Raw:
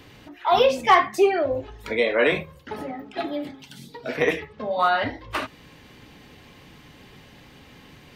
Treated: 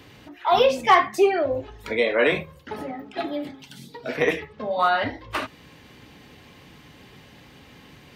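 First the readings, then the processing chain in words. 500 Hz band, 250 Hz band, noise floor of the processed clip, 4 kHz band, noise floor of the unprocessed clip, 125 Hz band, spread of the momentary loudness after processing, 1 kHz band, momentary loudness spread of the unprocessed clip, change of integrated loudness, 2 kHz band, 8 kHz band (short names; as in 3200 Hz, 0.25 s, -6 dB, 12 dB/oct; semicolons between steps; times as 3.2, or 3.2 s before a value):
0.0 dB, 0.0 dB, -50 dBFS, 0.0 dB, -50 dBFS, 0.0 dB, 18 LU, 0.0 dB, 18 LU, 0.0 dB, 0.0 dB, 0.0 dB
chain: HPF 47 Hz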